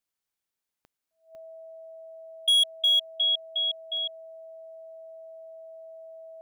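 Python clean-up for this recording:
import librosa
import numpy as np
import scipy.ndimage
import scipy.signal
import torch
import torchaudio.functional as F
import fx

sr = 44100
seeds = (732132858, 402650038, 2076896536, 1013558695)

y = fx.fix_declip(x, sr, threshold_db=-18.0)
y = fx.fix_declick_ar(y, sr, threshold=10.0)
y = fx.notch(y, sr, hz=650.0, q=30.0)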